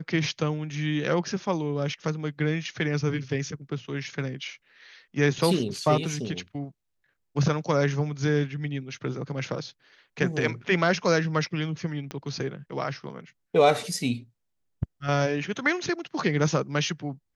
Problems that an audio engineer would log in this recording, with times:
12.11 s: pop -20 dBFS

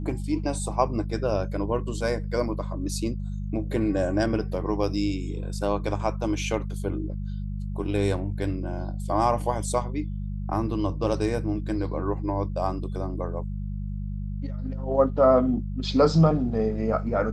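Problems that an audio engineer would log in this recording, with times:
hum 50 Hz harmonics 4 -31 dBFS

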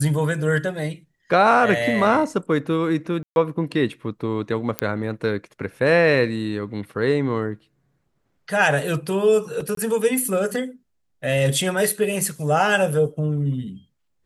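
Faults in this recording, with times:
3.23–3.36 s: dropout 131 ms
4.79 s: pop -6 dBFS
9.75–9.77 s: dropout 23 ms

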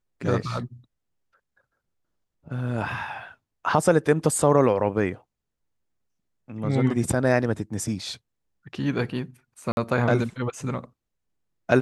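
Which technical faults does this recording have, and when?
9.72–9.77 s: dropout 51 ms

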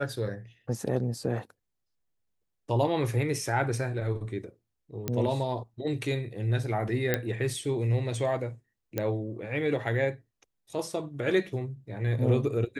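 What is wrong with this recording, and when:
5.08 s: pop -15 dBFS
7.14 s: pop -10 dBFS
8.98 s: pop -15 dBFS

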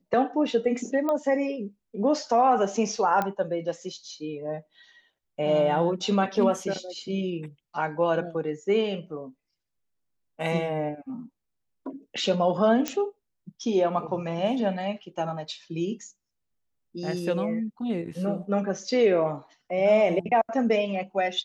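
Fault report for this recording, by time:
1.09 s: pop -16 dBFS
3.22 s: pop -14 dBFS
12.88 s: pop -11 dBFS

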